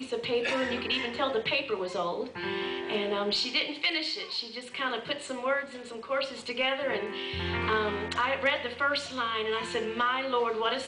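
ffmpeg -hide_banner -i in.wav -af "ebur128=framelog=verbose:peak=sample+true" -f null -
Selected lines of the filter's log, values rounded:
Integrated loudness:
  I:         -29.8 LUFS
  Threshold: -39.8 LUFS
Loudness range:
  LRA:         2.7 LU
  Threshold: -50.1 LUFS
  LRA low:   -31.6 LUFS
  LRA high:  -28.9 LUFS
Sample peak:
  Peak:      -14.4 dBFS
True peak:
  Peak:      -14.3 dBFS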